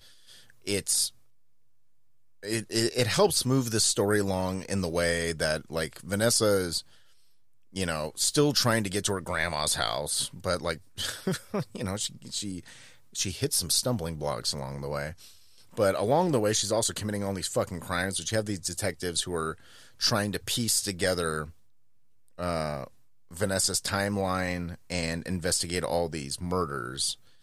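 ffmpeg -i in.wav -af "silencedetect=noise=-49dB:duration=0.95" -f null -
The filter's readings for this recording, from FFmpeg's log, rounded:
silence_start: 1.17
silence_end: 2.43 | silence_duration: 1.25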